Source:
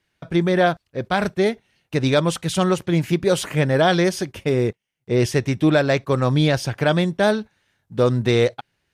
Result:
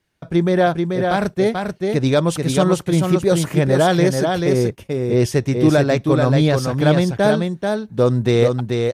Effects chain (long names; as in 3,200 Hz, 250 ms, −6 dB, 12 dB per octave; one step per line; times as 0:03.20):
parametric band 2,500 Hz −5.5 dB 2.1 octaves
on a send: single-tap delay 436 ms −4.5 dB
on the sum: level +2.5 dB